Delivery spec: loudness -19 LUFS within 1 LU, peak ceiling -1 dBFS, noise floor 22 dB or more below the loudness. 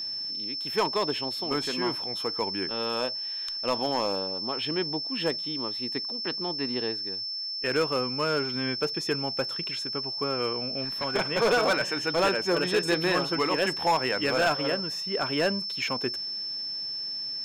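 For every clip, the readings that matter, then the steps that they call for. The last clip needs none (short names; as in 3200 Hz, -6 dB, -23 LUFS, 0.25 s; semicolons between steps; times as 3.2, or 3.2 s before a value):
clipped 0.7%; flat tops at -18.0 dBFS; steady tone 5300 Hz; tone level -31 dBFS; loudness -27.5 LUFS; peak -18.0 dBFS; loudness target -19.0 LUFS
-> clip repair -18 dBFS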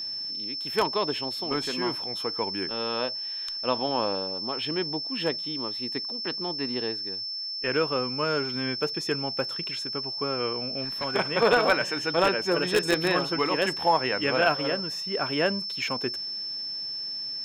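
clipped 0.0%; steady tone 5300 Hz; tone level -31 dBFS
-> notch 5300 Hz, Q 30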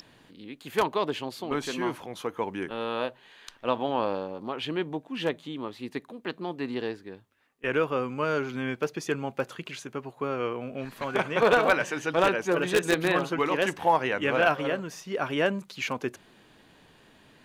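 steady tone none; loudness -28.5 LUFS; peak -8.5 dBFS; loudness target -19.0 LUFS
-> gain +9.5 dB; limiter -1 dBFS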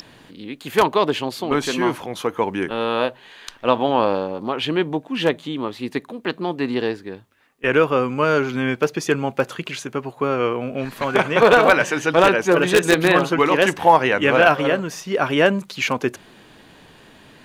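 loudness -19.5 LUFS; peak -1.0 dBFS; noise floor -49 dBFS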